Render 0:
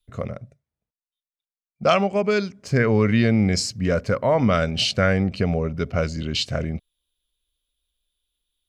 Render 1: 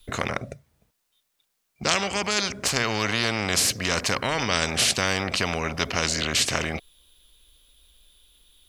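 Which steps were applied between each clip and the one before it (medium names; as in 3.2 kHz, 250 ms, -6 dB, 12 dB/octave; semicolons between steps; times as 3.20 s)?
spectrum-flattening compressor 4:1; trim +2 dB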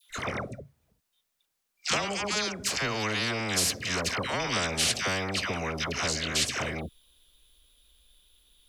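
phase dispersion lows, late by 99 ms, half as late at 940 Hz; trim -4.5 dB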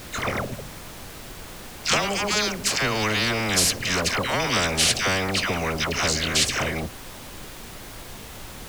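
added noise pink -45 dBFS; trim +6 dB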